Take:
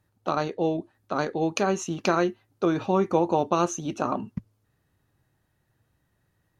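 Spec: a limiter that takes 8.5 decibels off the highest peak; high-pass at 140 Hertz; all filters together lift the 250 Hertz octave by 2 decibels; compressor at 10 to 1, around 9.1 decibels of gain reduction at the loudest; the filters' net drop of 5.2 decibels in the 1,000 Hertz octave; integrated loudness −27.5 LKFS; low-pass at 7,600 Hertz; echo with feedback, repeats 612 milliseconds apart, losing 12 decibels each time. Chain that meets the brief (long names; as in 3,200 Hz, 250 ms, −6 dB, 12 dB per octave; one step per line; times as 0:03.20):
high-pass filter 140 Hz
low-pass filter 7,600 Hz
parametric band 250 Hz +4.5 dB
parametric band 1,000 Hz −7.5 dB
downward compressor 10 to 1, threshold −26 dBFS
brickwall limiter −21 dBFS
repeating echo 612 ms, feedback 25%, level −12 dB
level +6.5 dB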